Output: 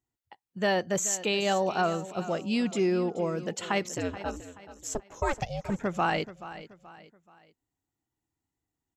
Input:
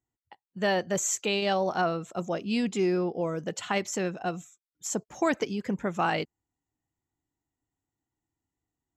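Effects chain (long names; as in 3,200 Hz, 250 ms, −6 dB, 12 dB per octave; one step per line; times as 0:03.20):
0:03.88–0:05.69: ring modulation 75 Hz → 400 Hz
on a send: repeating echo 429 ms, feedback 38%, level −15 dB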